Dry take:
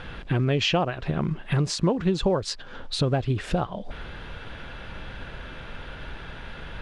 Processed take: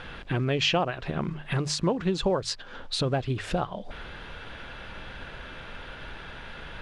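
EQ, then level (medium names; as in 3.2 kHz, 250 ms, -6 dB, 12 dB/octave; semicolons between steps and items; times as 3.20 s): bass shelf 410 Hz -4.5 dB; hum notches 50/100/150 Hz; 0.0 dB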